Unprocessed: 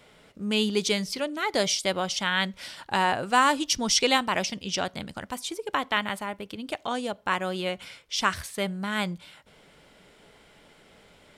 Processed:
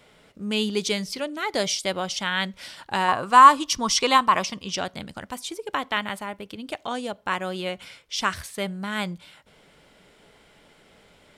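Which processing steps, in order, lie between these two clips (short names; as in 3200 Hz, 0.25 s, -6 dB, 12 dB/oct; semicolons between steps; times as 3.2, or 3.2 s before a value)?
3.08–4.73 bell 1100 Hz +15 dB 0.35 oct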